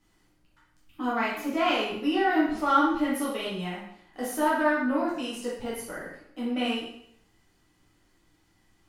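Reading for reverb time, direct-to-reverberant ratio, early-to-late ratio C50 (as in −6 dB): 0.70 s, −7.5 dB, 1.5 dB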